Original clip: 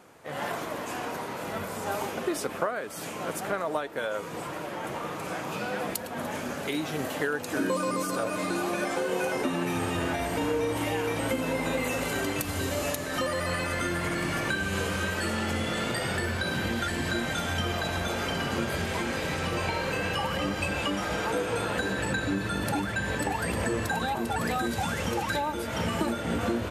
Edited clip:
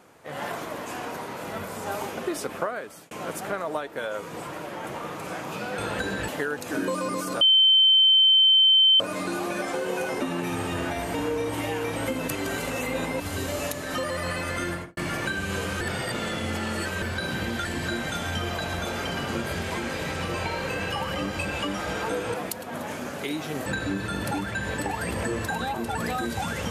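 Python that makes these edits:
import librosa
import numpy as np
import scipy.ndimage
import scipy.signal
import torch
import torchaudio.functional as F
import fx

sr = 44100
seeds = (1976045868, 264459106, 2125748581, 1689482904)

y = fx.studio_fade_out(x, sr, start_s=13.92, length_s=0.28)
y = fx.edit(y, sr, fx.fade_out_span(start_s=2.77, length_s=0.34),
    fx.swap(start_s=5.78, length_s=1.32, other_s=21.57, other_length_s=0.5),
    fx.insert_tone(at_s=8.23, length_s=1.59, hz=3090.0, db=-14.0),
    fx.reverse_span(start_s=11.51, length_s=0.92),
    fx.reverse_span(start_s=15.04, length_s=1.21), tone=tone)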